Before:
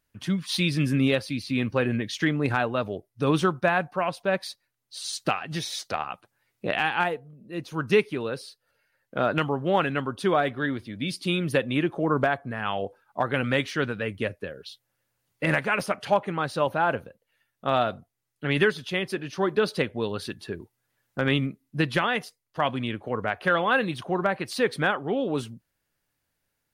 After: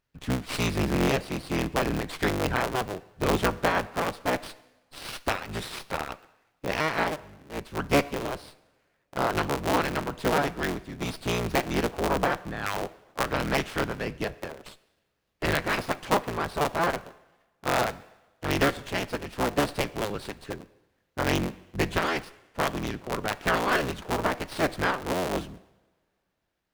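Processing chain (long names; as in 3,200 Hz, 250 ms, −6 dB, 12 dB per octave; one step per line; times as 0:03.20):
sub-harmonics by changed cycles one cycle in 3, inverted
coupled-rooms reverb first 0.98 s, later 3.3 s, from −26 dB, DRR 16 dB
windowed peak hold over 5 samples
level −2 dB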